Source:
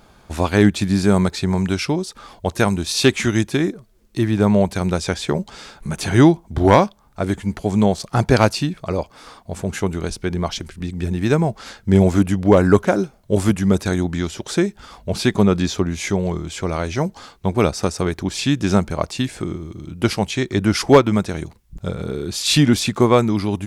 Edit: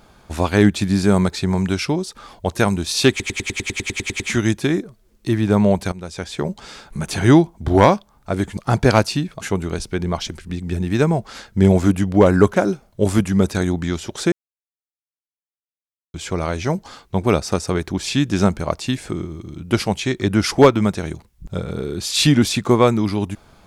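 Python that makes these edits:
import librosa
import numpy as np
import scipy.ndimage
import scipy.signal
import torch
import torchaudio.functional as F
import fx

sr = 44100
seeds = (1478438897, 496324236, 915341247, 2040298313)

y = fx.edit(x, sr, fx.stutter(start_s=3.1, slice_s=0.1, count=12),
    fx.fade_in_from(start_s=4.82, length_s=0.73, floor_db=-18.5),
    fx.cut(start_s=7.47, length_s=0.56),
    fx.cut(start_s=8.87, length_s=0.85),
    fx.silence(start_s=14.63, length_s=1.82), tone=tone)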